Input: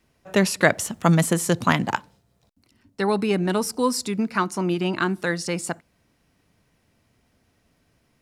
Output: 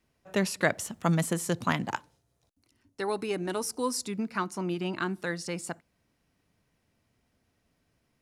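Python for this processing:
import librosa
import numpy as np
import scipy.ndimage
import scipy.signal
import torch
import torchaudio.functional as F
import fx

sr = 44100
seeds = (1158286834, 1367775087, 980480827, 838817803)

y = fx.graphic_eq_31(x, sr, hz=(200, 315, 6300, 10000), db=(-9, 3, 5, 6), at=(1.91, 4.06))
y = y * librosa.db_to_amplitude(-8.0)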